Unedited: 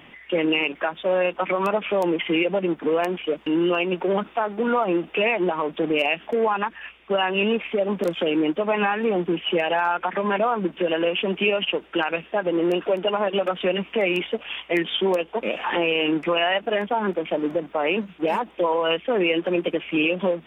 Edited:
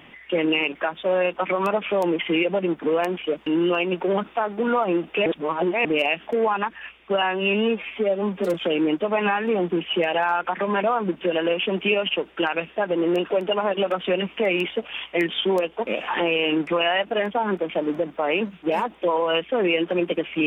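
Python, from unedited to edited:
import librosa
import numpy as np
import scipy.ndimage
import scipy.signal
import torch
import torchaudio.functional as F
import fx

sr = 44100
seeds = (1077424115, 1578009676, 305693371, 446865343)

y = fx.edit(x, sr, fx.reverse_span(start_s=5.26, length_s=0.59),
    fx.stretch_span(start_s=7.22, length_s=0.88, factor=1.5), tone=tone)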